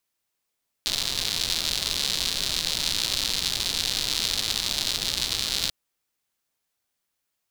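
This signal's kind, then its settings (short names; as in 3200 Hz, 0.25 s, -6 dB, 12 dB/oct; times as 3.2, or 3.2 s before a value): rain from filtered ticks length 4.84 s, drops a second 170, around 4000 Hz, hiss -10 dB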